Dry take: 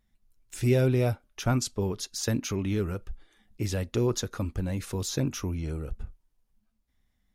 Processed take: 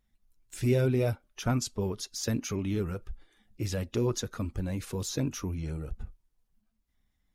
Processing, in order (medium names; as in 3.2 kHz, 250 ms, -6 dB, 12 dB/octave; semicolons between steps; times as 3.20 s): coarse spectral quantiser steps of 15 dB; trim -2 dB